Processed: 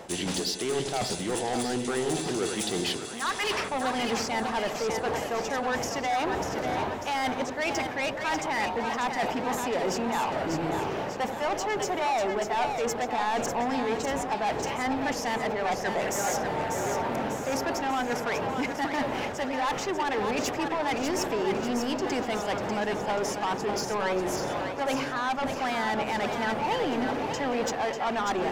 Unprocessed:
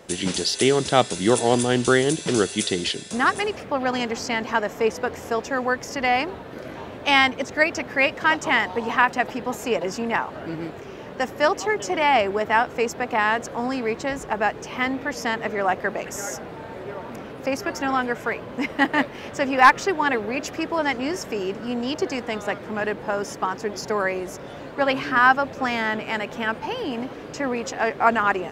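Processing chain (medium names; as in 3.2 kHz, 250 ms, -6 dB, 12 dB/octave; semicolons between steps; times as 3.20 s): time-frequency box 3.22–3.69 s, 890–6100 Hz +12 dB; reverse; compression 10:1, threshold -28 dBFS, peak gain reduction 24.5 dB; reverse; peaking EQ 820 Hz +7 dB 0.67 oct; saturation -29.5 dBFS, distortion -9 dB; on a send: two-band feedback delay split 600 Hz, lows 85 ms, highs 594 ms, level -6 dB; on the sum: attacks held to a fixed rise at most 470 dB/s; trim +5 dB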